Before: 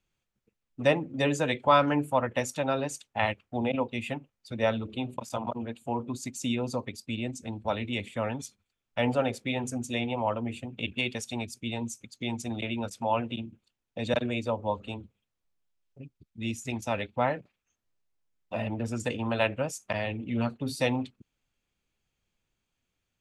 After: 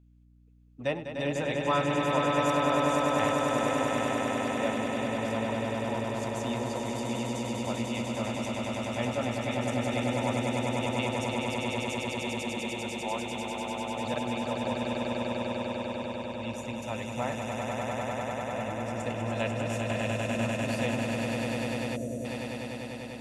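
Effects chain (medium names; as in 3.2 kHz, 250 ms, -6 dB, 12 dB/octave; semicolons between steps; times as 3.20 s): echo with a slow build-up 99 ms, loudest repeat 8, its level -4.5 dB; hum 60 Hz, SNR 28 dB; time-frequency box 21.96–22.25 s, 720–5700 Hz -18 dB; trim -7 dB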